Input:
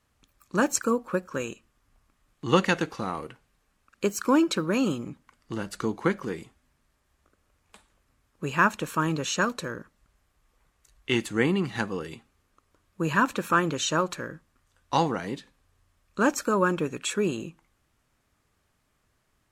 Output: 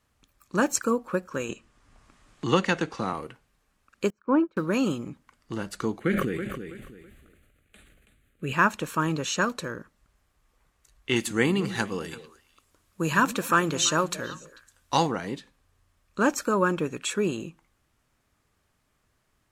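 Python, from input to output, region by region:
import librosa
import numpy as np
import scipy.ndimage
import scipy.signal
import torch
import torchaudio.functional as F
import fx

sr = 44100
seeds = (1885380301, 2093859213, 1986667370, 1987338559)

y = fx.chain(x, sr, fx.lowpass(hz=9400.0, slope=24),
    fx.band_squash(depth_pct=40), at=(1.49, 3.13))
y = fx.chain(y, sr, fx.lowpass(hz=1400.0, slope=12),
    fx.upward_expand(threshold_db=-34.0, expansion=2.5), at=(4.1, 4.57))
y = fx.chain(y, sr, fx.fixed_phaser(hz=2300.0, stages=4),
    fx.echo_feedback(ms=327, feedback_pct=20, wet_db=-9.0),
    fx.sustainer(db_per_s=30.0), at=(5.99, 8.53))
y = fx.chain(y, sr, fx.high_shelf(hz=3900.0, db=8.5),
    fx.echo_stepped(ms=111, hz=190.0, octaves=1.4, feedback_pct=70, wet_db=-10), at=(11.16, 15.07))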